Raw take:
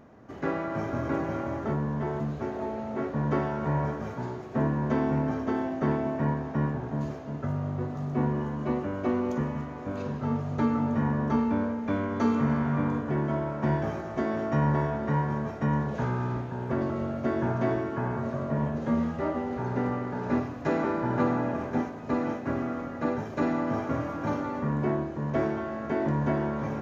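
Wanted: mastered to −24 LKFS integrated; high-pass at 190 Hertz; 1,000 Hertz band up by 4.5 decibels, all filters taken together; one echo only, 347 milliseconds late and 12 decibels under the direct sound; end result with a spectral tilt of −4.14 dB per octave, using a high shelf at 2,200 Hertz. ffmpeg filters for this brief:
ffmpeg -i in.wav -af "highpass=190,equalizer=frequency=1000:width_type=o:gain=6.5,highshelf=frequency=2200:gain=-6,aecho=1:1:347:0.251,volume=5.5dB" out.wav

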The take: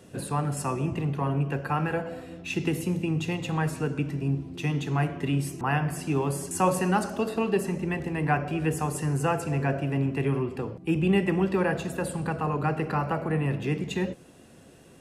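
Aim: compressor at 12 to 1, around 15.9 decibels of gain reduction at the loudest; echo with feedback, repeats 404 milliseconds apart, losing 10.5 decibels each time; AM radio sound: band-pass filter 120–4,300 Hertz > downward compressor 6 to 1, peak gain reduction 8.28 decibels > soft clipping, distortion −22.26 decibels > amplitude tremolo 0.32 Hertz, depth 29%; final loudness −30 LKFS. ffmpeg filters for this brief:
ffmpeg -i in.wav -af "acompressor=threshold=-35dB:ratio=12,highpass=120,lowpass=4300,aecho=1:1:404|808|1212:0.299|0.0896|0.0269,acompressor=threshold=-41dB:ratio=6,asoftclip=threshold=-35dB,tremolo=f=0.32:d=0.29,volume=17.5dB" out.wav

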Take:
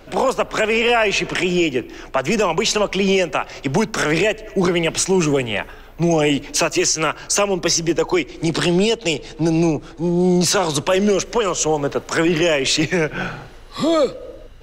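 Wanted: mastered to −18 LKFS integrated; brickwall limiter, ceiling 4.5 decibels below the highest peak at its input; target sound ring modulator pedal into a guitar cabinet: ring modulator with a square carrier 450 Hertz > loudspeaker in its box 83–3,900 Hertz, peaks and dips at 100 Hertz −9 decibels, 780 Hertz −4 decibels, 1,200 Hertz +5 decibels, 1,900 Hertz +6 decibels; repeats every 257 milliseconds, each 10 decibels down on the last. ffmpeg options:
ffmpeg -i in.wav -af "alimiter=limit=-13dB:level=0:latency=1,aecho=1:1:257|514|771|1028:0.316|0.101|0.0324|0.0104,aeval=exprs='val(0)*sgn(sin(2*PI*450*n/s))':channel_layout=same,highpass=83,equalizer=frequency=100:width_type=q:width=4:gain=-9,equalizer=frequency=780:width_type=q:width=4:gain=-4,equalizer=frequency=1200:width_type=q:width=4:gain=5,equalizer=frequency=1900:width_type=q:width=4:gain=6,lowpass=frequency=3900:width=0.5412,lowpass=frequency=3900:width=1.3066,volume=3dB" out.wav

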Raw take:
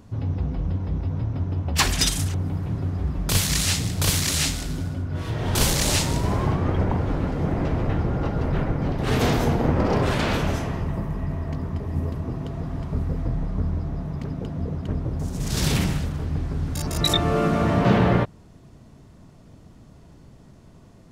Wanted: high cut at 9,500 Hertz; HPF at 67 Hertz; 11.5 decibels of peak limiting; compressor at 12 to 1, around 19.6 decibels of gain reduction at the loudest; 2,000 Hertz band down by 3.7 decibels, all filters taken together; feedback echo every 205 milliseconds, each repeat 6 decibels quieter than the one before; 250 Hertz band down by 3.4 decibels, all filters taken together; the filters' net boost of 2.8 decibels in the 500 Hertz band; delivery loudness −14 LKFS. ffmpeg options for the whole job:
ffmpeg -i in.wav -af "highpass=67,lowpass=9500,equalizer=frequency=250:width_type=o:gain=-6.5,equalizer=frequency=500:width_type=o:gain=5.5,equalizer=frequency=2000:width_type=o:gain=-5,acompressor=threshold=-35dB:ratio=12,alimiter=level_in=10.5dB:limit=-24dB:level=0:latency=1,volume=-10.5dB,aecho=1:1:205|410|615|820|1025|1230:0.501|0.251|0.125|0.0626|0.0313|0.0157,volume=28dB" out.wav

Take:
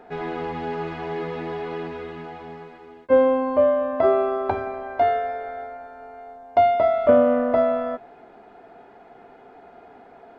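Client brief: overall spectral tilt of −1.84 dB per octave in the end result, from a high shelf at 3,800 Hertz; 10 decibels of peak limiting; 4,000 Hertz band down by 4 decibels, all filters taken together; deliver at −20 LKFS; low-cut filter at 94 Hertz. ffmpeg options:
ffmpeg -i in.wav -af "highpass=94,highshelf=frequency=3800:gain=5.5,equalizer=frequency=4000:width_type=o:gain=-9,volume=5dB,alimiter=limit=-9dB:level=0:latency=1" out.wav

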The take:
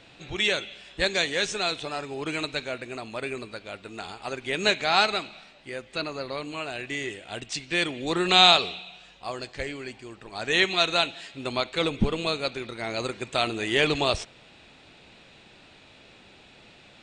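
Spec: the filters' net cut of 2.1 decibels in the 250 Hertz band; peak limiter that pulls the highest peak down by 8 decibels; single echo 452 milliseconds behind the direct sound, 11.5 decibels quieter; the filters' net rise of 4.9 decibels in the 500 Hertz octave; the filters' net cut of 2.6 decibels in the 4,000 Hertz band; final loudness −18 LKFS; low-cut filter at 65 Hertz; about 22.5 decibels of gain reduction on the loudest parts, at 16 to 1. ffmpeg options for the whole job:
ffmpeg -i in.wav -af "highpass=65,equalizer=frequency=250:width_type=o:gain=-8,equalizer=frequency=500:width_type=o:gain=8.5,equalizer=frequency=4000:width_type=o:gain=-3,acompressor=threshold=-34dB:ratio=16,alimiter=level_in=5dB:limit=-24dB:level=0:latency=1,volume=-5dB,aecho=1:1:452:0.266,volume=23dB" out.wav

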